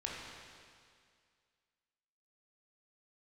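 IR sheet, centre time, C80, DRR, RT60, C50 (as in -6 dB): 0.116 s, 1.0 dB, -3.5 dB, 2.1 s, -1.0 dB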